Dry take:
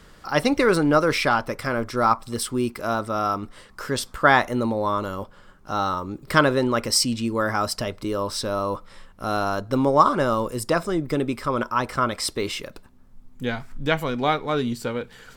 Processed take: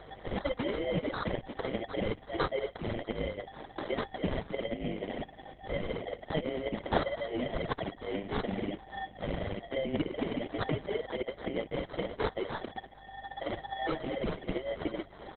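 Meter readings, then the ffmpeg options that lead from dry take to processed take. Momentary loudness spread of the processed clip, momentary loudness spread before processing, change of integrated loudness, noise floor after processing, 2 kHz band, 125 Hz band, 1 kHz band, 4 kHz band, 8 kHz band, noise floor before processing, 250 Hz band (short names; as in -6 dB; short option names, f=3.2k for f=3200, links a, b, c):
7 LU, 11 LU, -12.5 dB, -53 dBFS, -14.5 dB, -10.0 dB, -16.0 dB, -13.0 dB, under -40 dB, -51 dBFS, -11.0 dB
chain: -af "afftfilt=real='real(if(lt(b,272),68*(eq(floor(b/68),0)*3+eq(floor(b/68),1)*2+eq(floor(b/68),2)*1+eq(floor(b/68),3)*0)+mod(b,68),b),0)':imag='imag(if(lt(b,272),68*(eq(floor(b/68),0)*3+eq(floor(b/68),1)*2+eq(floor(b/68),2)*1+eq(floor(b/68),3)*0)+mod(b,68),b),0)':win_size=2048:overlap=0.75,aphaser=in_gain=1:out_gain=1:delay=2.3:decay=0.66:speed=0.61:type=sinusoidal,equalizer=f=1.8k:w=4.9:g=-3.5,acompressor=threshold=-34dB:ratio=3,superequalizer=7b=3.16:15b=2.82:16b=2.51,aeval=exprs='val(0)+0.002*(sin(2*PI*50*n/s)+sin(2*PI*2*50*n/s)/2+sin(2*PI*3*50*n/s)/3+sin(2*PI*4*50*n/s)/4+sin(2*PI*5*50*n/s)/5)':c=same,acrusher=samples=17:mix=1:aa=0.000001,aecho=1:1:432|864|1296:0.0794|0.0286|0.0103" -ar 48000 -c:a libopus -b:a 8k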